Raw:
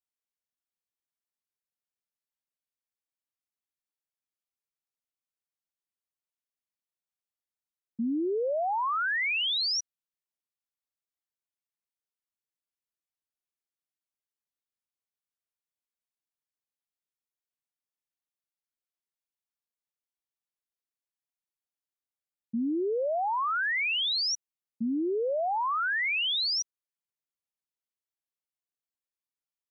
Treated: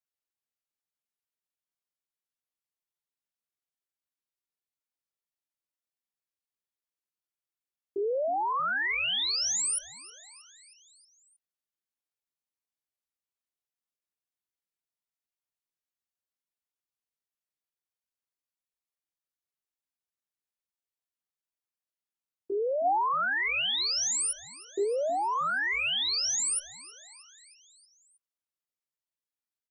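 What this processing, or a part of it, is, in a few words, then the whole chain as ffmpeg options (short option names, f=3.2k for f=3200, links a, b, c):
chipmunk voice: -filter_complex "[0:a]asetrate=76340,aresample=44100,atempo=0.577676,asplit=3[a][b][c];[a]afade=t=out:st=22.84:d=0.02[d];[b]equalizer=f=580:t=o:w=0.98:g=7,afade=t=in:st=22.84:d=0.02,afade=t=out:st=24.83:d=0.02[e];[c]afade=t=in:st=24.83:d=0.02[f];[d][e][f]amix=inputs=3:normalize=0,asplit=6[g][h][i][j][k][l];[h]adelay=316,afreqshift=-120,volume=-20dB[m];[i]adelay=632,afreqshift=-240,volume=-24.2dB[n];[j]adelay=948,afreqshift=-360,volume=-28.3dB[o];[k]adelay=1264,afreqshift=-480,volume=-32.5dB[p];[l]adelay=1580,afreqshift=-600,volume=-36.6dB[q];[g][m][n][o][p][q]amix=inputs=6:normalize=0"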